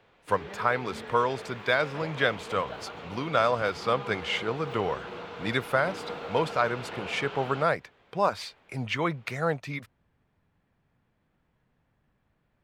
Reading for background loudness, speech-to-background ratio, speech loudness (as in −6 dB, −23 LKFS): −40.0 LKFS, 11.0 dB, −29.0 LKFS